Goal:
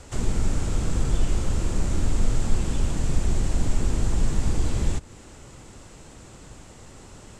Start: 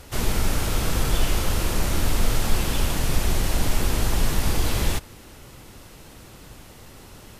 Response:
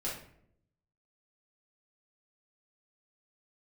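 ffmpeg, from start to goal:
-filter_complex "[0:a]acrossover=split=380[link_01][link_02];[link_02]acompressor=threshold=-37dB:ratio=3[link_03];[link_01][link_03]amix=inputs=2:normalize=0,lowpass=frequency=7600:width_type=q:width=4.6,highshelf=frequency=2600:gain=-9"

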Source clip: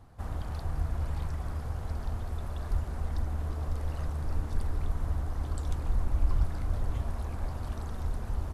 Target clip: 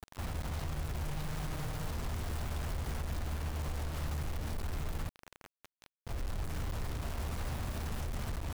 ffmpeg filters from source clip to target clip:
ffmpeg -i in.wav -filter_complex "[0:a]adynamicequalizer=threshold=0.00355:dfrequency=150:dqfactor=1.2:tfrequency=150:tqfactor=1.2:attack=5:release=100:ratio=0.375:range=3:mode=boostabove:tftype=bell,acompressor=threshold=-31dB:ratio=12,asettb=1/sr,asplit=3[link_01][link_02][link_03];[link_01]atrim=end=1.044[link_04];[link_02]atrim=start=1.04:end=1.91,asetpts=PTS-STARTPTS,afade=type=in:duration=0.004:curve=qsin,afade=type=out:start_time=0.866:duration=0.004:curve=qsin,aecho=1:1:6.5:0.68,atrim=end_sample=38367[link_05];[link_03]atrim=start=1.906[link_06];[link_04][link_05]acrossfade=duration=0.004:curve1=hsin:curve2=qsin[link_07];[link_07][link_06]acrossfade=duration=0.004:curve1=qsin:curve2=hsin,alimiter=level_in=12dB:limit=-24dB:level=0:latency=1:release=62,volume=-12dB,asettb=1/sr,asplit=3[link_08][link_09][link_10];[link_08]atrim=end=5.094[link_11];[link_09]atrim=start=5.09:end=6.07,asetpts=PTS-STARTPTS,afade=type=in:duration=0.004:curve=qsin,afade=type=out:start_time=0.976:duration=0.004:curve=qsin,acrossover=split=550 2100:gain=0.158 1 0.0794[link_12][link_13][link_14];[link_12][link_13][link_14]amix=inputs=3:normalize=0[link_15];[link_10]atrim=start=6.066[link_16];[link_11][link_15]acrossfade=duration=0.004:curve1=hsin:curve2=qsin[link_17];[link_17][link_16]acrossfade=duration=0.004:curve1=qsin:curve2=hsin,acrusher=bits=7:mix=0:aa=0.000001,volume=5.5dB" out.wav

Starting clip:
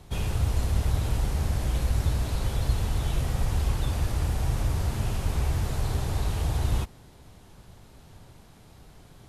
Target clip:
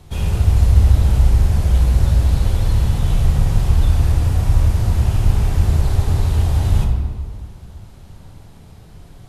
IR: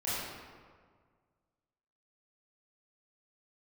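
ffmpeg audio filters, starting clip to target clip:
-filter_complex "[0:a]bandreject=frequency=58.95:width_type=h:width=4,bandreject=frequency=117.9:width_type=h:width=4,bandreject=frequency=176.85:width_type=h:width=4,bandreject=frequency=235.8:width_type=h:width=4,bandreject=frequency=294.75:width_type=h:width=4,bandreject=frequency=353.7:width_type=h:width=4,bandreject=frequency=412.65:width_type=h:width=4,bandreject=frequency=471.6:width_type=h:width=4,bandreject=frequency=530.55:width_type=h:width=4,bandreject=frequency=589.5:width_type=h:width=4,bandreject=frequency=648.45:width_type=h:width=4,bandreject=frequency=707.4:width_type=h:width=4,bandreject=frequency=766.35:width_type=h:width=4,bandreject=frequency=825.3:width_type=h:width=4,bandreject=frequency=884.25:width_type=h:width=4,bandreject=frequency=943.2:width_type=h:width=4,bandreject=frequency=1002.15:width_type=h:width=4,bandreject=frequency=1061.1:width_type=h:width=4,bandreject=frequency=1120.05:width_type=h:width=4,bandreject=frequency=1179:width_type=h:width=4,bandreject=frequency=1237.95:width_type=h:width=4,bandreject=frequency=1296.9:width_type=h:width=4,bandreject=frequency=1355.85:width_type=h:width=4,bandreject=frequency=1414.8:width_type=h:width=4,bandreject=frequency=1473.75:width_type=h:width=4,bandreject=frequency=1532.7:width_type=h:width=4,bandreject=frequency=1591.65:width_type=h:width=4,bandreject=frequency=1650.6:width_type=h:width=4,bandreject=frequency=1709.55:width_type=h:width=4,bandreject=frequency=1768.5:width_type=h:width=4,bandreject=frequency=1827.45:width_type=h:width=4,bandreject=frequency=1886.4:width_type=h:width=4,bandreject=frequency=1945.35:width_type=h:width=4,bandreject=frequency=2004.3:width_type=h:width=4,bandreject=frequency=2063.25:width_type=h:width=4,bandreject=frequency=2122.2:width_type=h:width=4,bandreject=frequency=2181.15:width_type=h:width=4,bandreject=frequency=2240.1:width_type=h:width=4,bandreject=frequency=2299.05:width_type=h:width=4,bandreject=frequency=2358:width_type=h:width=4,asplit=2[link_01][link_02];[1:a]atrim=start_sample=2205,lowshelf=frequency=250:gain=10[link_03];[link_02][link_03]afir=irnorm=-1:irlink=0,volume=-7.5dB[link_04];[link_01][link_04]amix=inputs=2:normalize=0,volume=1.5dB"

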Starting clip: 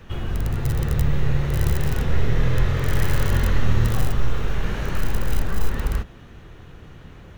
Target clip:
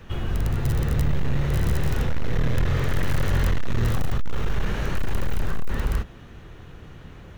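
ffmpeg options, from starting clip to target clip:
ffmpeg -i in.wav -af "asoftclip=type=hard:threshold=-16dB" out.wav

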